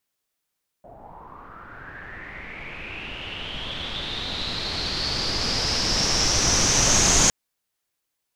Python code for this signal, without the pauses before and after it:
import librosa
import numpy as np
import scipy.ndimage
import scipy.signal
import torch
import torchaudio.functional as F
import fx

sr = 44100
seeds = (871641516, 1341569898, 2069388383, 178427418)

y = fx.riser_noise(sr, seeds[0], length_s=6.46, colour='pink', kind='lowpass', start_hz=630.0, end_hz=6600.0, q=7.2, swell_db=27.5, law='linear')